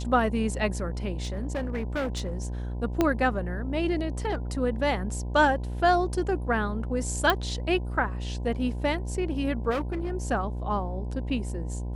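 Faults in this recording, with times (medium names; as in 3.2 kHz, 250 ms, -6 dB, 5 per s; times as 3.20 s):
buzz 60 Hz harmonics 17 -32 dBFS
1.22–2.45 s: clipped -25.5 dBFS
3.01 s: pop -10 dBFS
7.30 s: pop -9 dBFS
9.70–10.12 s: clipped -25 dBFS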